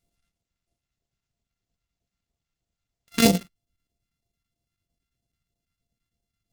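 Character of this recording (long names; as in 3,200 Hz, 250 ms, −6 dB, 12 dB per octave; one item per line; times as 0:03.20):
a buzz of ramps at a fixed pitch in blocks of 64 samples
chopped level 9 Hz, depth 60%, duty 85%
phaser sweep stages 2, 3.1 Hz, lowest notch 570–1,400 Hz
Opus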